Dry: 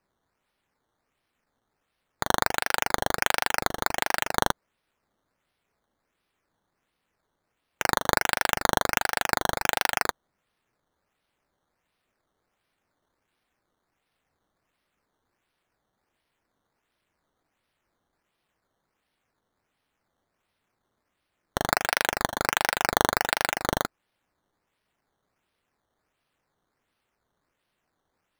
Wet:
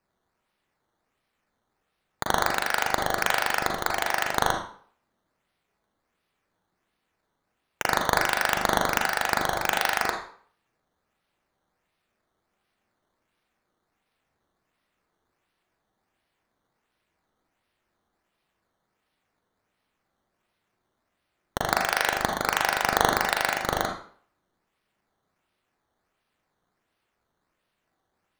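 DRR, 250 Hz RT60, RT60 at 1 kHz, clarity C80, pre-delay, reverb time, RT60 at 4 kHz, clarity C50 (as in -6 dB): 2.0 dB, 0.45 s, 0.50 s, 9.0 dB, 36 ms, 0.50 s, 0.45 s, 4.0 dB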